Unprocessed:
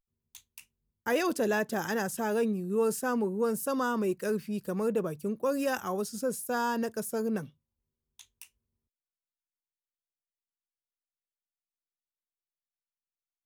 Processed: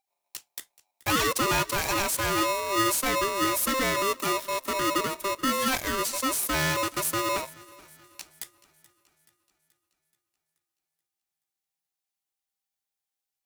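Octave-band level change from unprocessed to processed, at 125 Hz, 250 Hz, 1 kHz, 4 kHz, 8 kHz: +3.5 dB, -0.5 dB, +7.5 dB, +16.0 dB, +12.0 dB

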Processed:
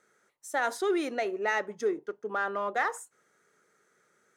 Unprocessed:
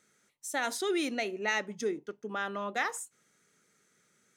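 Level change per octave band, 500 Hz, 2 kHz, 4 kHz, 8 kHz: +4.0 dB, +1.5 dB, -5.5 dB, -4.5 dB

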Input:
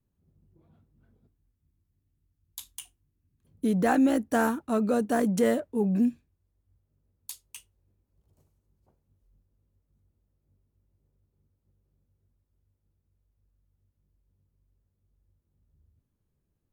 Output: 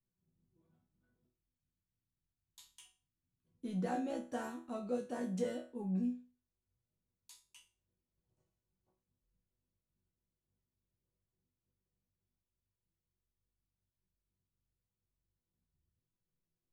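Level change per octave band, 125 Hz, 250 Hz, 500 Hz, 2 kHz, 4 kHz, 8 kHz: -9.5 dB, -14.0 dB, -13.0 dB, -17.5 dB, -12.5 dB, -16.0 dB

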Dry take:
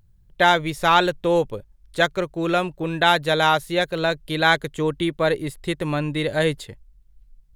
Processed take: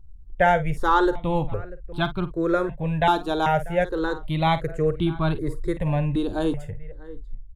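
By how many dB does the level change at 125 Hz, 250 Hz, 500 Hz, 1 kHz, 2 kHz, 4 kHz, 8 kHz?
+3.0 dB, +0.5 dB, -2.5 dB, -2.0 dB, -7.5 dB, -10.5 dB, under -10 dB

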